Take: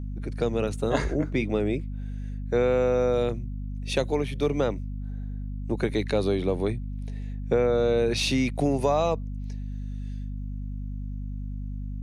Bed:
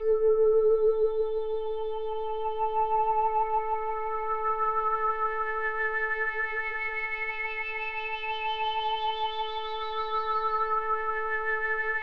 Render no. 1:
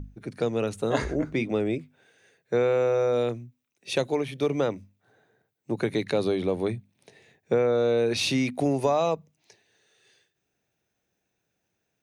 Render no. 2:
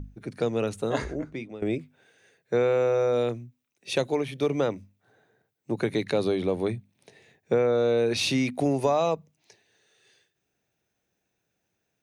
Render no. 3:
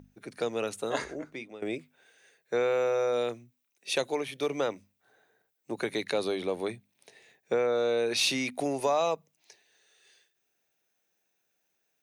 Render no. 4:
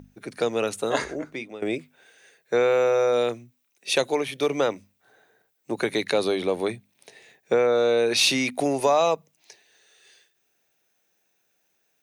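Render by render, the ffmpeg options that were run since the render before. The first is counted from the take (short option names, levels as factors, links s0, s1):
-af "bandreject=f=50:t=h:w=6,bandreject=f=100:t=h:w=6,bandreject=f=150:t=h:w=6,bandreject=f=200:t=h:w=6,bandreject=f=250:t=h:w=6"
-filter_complex "[0:a]asplit=2[s0][s1];[s0]atrim=end=1.62,asetpts=PTS-STARTPTS,afade=t=out:st=0.71:d=0.91:silence=0.141254[s2];[s1]atrim=start=1.62,asetpts=PTS-STARTPTS,afade=t=in:d=0.004:c=hsin:silence=0.141254[s3];[s2][s3]concat=n=2:v=0:a=1"
-af "highpass=f=600:p=1,highshelf=f=8800:g=6"
-af "volume=2.11"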